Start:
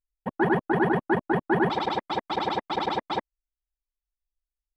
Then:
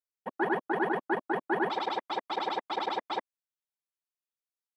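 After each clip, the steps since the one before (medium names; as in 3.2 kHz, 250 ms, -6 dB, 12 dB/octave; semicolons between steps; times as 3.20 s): high-pass 350 Hz 12 dB/octave; trim -4 dB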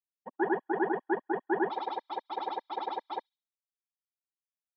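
feedback echo behind a high-pass 68 ms, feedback 56%, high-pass 4.8 kHz, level -12.5 dB; spectral contrast expander 1.5:1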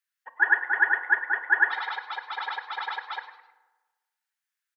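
resonant high-pass 1.6 kHz, resonance Q 3.6; frequency-shifting echo 104 ms, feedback 36%, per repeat +130 Hz, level -14.5 dB; FDN reverb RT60 1.2 s, low-frequency decay 0.95×, high-frequency decay 0.6×, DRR 10 dB; trim +7 dB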